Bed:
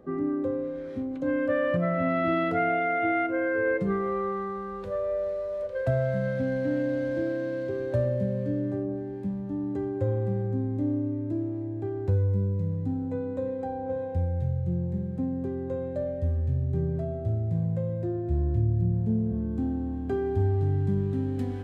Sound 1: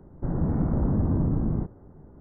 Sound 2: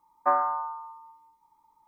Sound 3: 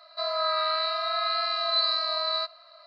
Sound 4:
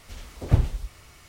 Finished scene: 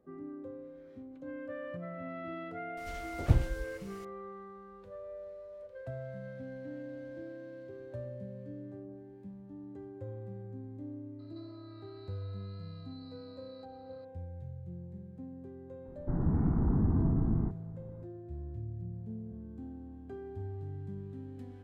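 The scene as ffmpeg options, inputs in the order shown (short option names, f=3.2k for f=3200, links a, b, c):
-filter_complex "[0:a]volume=-16dB[a];[3:a]acompressor=threshold=-42dB:ratio=6:attack=3.2:release=140:knee=1:detection=peak[b];[1:a]equalizer=f=560:t=o:w=0.3:g=-15[c];[4:a]atrim=end=1.28,asetpts=PTS-STARTPTS,volume=-5.5dB,afade=t=in:d=0.004:c=hsin,afade=t=out:st=1.276:d=0.004:c=hsin,adelay=2770[d];[b]atrim=end=2.86,asetpts=PTS-STARTPTS,volume=-16.5dB,afade=t=in:d=0.004:c=hsin,afade=t=out:st=2.856:d=0.004:c=hsin,adelay=11190[e];[c]atrim=end=2.2,asetpts=PTS-STARTPTS,volume=-4dB,afade=t=in:d=0.004:c=hsin,afade=t=out:st=2.196:d=0.004:c=hsin,adelay=15850[f];[a][d][e][f]amix=inputs=4:normalize=0"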